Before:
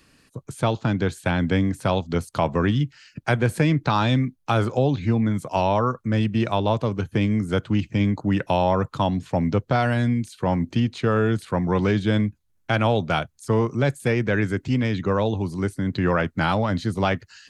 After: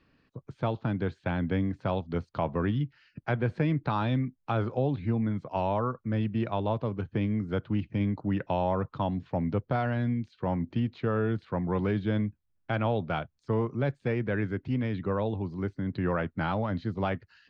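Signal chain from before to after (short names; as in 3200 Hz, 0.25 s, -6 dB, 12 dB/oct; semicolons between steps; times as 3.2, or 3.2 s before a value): LPF 4800 Hz 24 dB/oct; high shelf 3100 Hz -11.5 dB; gain -7 dB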